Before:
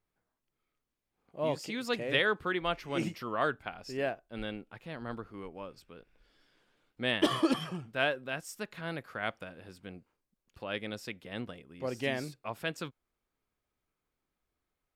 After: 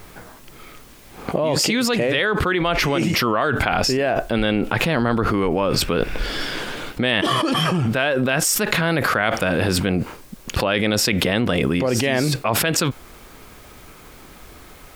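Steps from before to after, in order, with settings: fast leveller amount 100%; gain +2.5 dB

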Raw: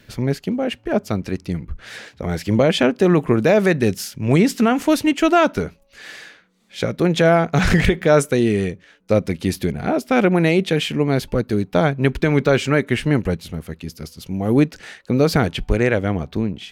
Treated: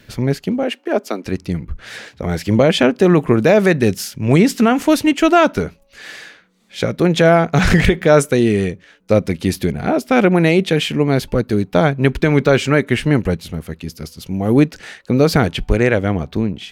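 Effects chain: 0.63–1.26 steep high-pass 250 Hz 36 dB/oct; gain +3 dB

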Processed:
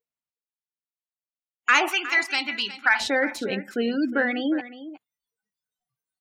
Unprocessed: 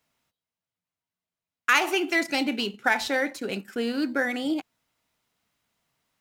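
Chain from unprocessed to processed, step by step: 1.88–3 resonant low shelf 760 Hz -12.5 dB, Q 1.5; spectral gate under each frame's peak -25 dB strong; spectral noise reduction 27 dB; in parallel at -8 dB: soft clip -15 dBFS, distortion -15 dB; on the sum: echo 0.361 s -14.5 dB

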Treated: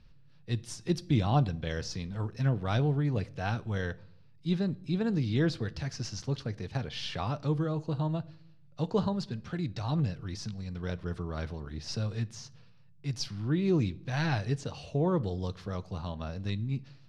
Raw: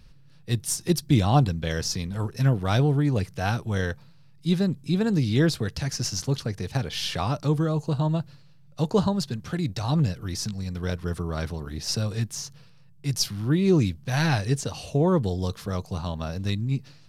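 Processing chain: LPF 4600 Hz 12 dB/oct; reverb RT60 0.70 s, pre-delay 9 ms, DRR 16.5 dB; gain -6.5 dB

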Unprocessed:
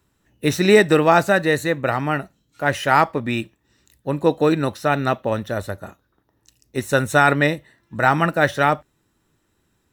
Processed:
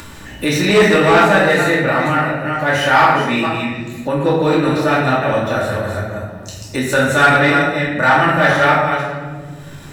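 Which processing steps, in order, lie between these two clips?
reverse delay 0.231 s, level -7 dB; high shelf 7600 Hz -7.5 dB; shoebox room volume 270 m³, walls mixed, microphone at 2.5 m; soft clip -1 dBFS, distortion -16 dB; tilt shelf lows -4 dB, about 680 Hz; upward compressor, threshold -11 dBFS; gain -2.5 dB

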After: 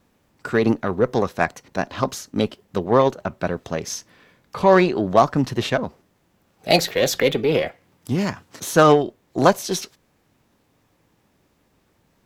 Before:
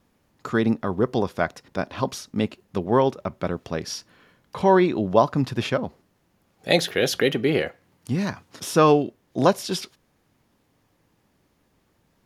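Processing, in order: formant shift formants +2 st; added harmonics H 6 -26 dB, 7 -44 dB, 8 -25 dB, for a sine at -4 dBFS; gain +3 dB

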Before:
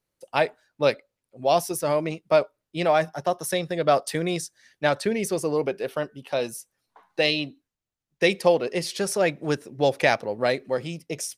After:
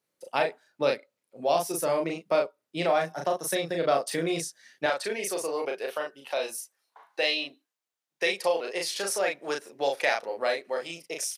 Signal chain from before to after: HPF 200 Hz 12 dB/oct, from 4.86 s 550 Hz; doubler 36 ms -3 dB; compressor 1.5:1, threshold -30 dBFS, peak gain reduction 6.5 dB

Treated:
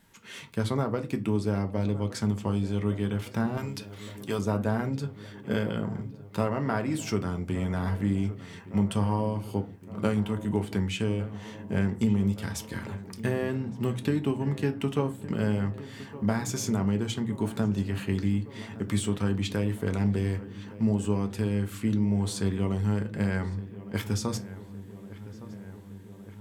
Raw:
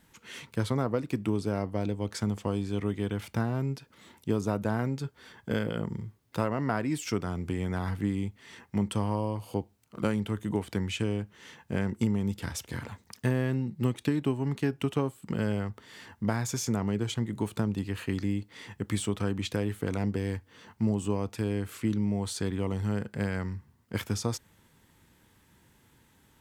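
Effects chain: 3.57–4.39 tilt shelf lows -8.5 dB, about 680 Hz; darkening echo 1.164 s, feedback 74%, low-pass 2300 Hz, level -16 dB; on a send at -6 dB: reverb RT60 0.30 s, pre-delay 4 ms

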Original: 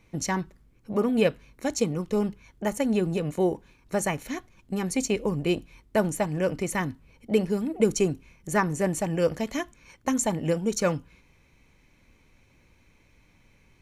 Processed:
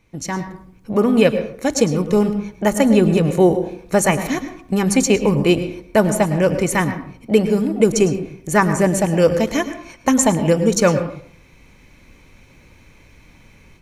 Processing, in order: AGC gain up to 12 dB; reverb RT60 0.55 s, pre-delay 99 ms, DRR 10 dB

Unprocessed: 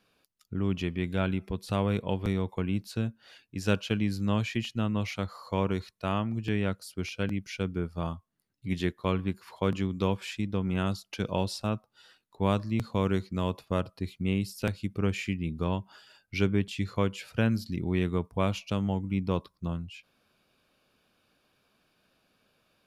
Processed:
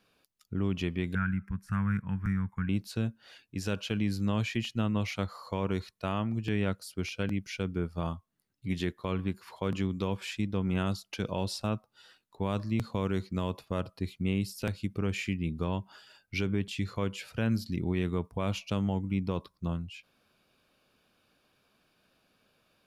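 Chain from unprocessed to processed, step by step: 1.15–2.69 EQ curve 200 Hz 0 dB, 380 Hz -21 dB, 570 Hz -27 dB, 1600 Hz +9 dB, 3800 Hz -29 dB, 5600 Hz -10 dB; limiter -19 dBFS, peak gain reduction 7.5 dB

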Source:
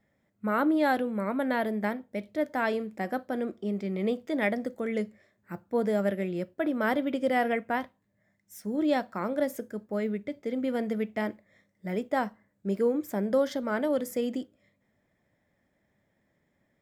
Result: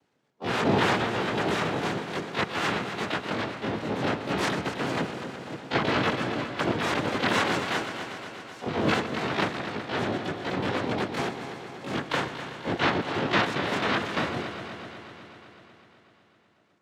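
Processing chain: noise vocoder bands 3; on a send: multi-head echo 0.125 s, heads first and second, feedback 72%, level -13 dB; on the sum: harmoniser +12 st -2 dB; air absorption 61 m; gain -1 dB

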